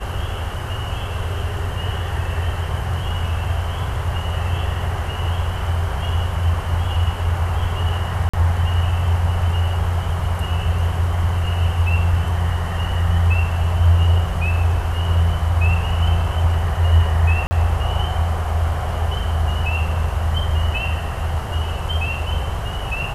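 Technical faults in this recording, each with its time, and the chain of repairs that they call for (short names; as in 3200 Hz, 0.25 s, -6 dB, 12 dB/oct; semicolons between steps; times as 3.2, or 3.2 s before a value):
8.29–8.34 gap 45 ms
17.47–17.51 gap 40 ms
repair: interpolate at 8.29, 45 ms; interpolate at 17.47, 40 ms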